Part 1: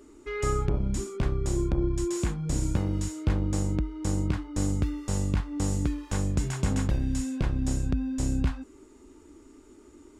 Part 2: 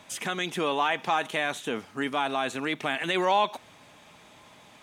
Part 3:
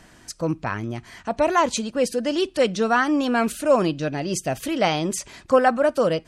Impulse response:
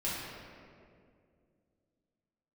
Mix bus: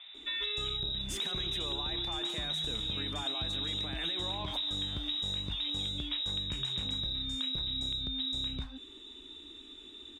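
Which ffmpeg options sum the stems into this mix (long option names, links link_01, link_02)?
-filter_complex "[0:a]volume=1.5dB,asplit=2[link_01][link_02];[link_02]volume=-7dB[link_03];[1:a]alimiter=level_in=1dB:limit=-24dB:level=0:latency=1:release=32,volume=-1dB,adelay=1000,volume=1dB,asplit=2[link_04][link_05];[link_05]volume=-13.5dB[link_06];[2:a]acompressor=threshold=-24dB:ratio=6,volume=-8.5dB,asplit=2[link_07][link_08];[link_08]volume=-21.5dB[link_09];[link_01][link_07]amix=inputs=2:normalize=0,lowpass=frequency=3300:width_type=q:width=0.5098,lowpass=frequency=3300:width_type=q:width=0.6013,lowpass=frequency=3300:width_type=q:width=0.9,lowpass=frequency=3300:width_type=q:width=2.563,afreqshift=-3900,alimiter=limit=-17dB:level=0:latency=1:release=171,volume=0dB[link_10];[link_03][link_06][link_09]amix=inputs=3:normalize=0,aecho=0:1:145:1[link_11];[link_04][link_10][link_11]amix=inputs=3:normalize=0,acompressor=threshold=-33dB:ratio=6"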